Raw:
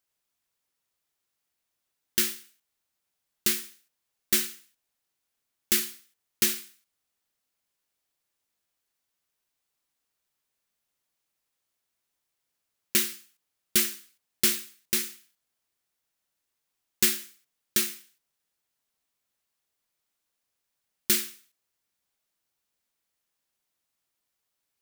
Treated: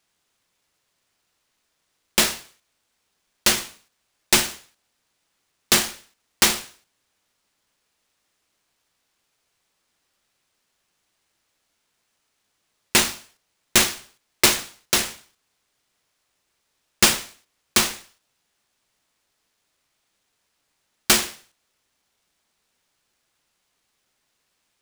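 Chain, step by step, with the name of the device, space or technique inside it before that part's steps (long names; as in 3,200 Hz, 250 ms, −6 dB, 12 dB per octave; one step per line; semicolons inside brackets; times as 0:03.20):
early companding sampler (sample-rate reduction 17,000 Hz, jitter 0%; log-companded quantiser 8 bits)
level +6.5 dB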